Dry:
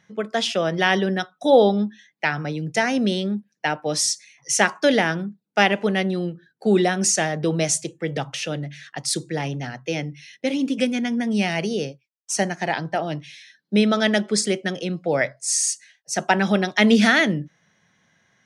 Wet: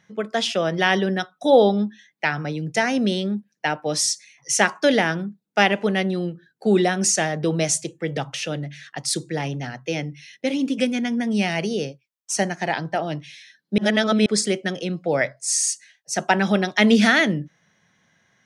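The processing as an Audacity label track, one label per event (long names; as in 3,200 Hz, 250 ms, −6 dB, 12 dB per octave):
13.780000	14.260000	reverse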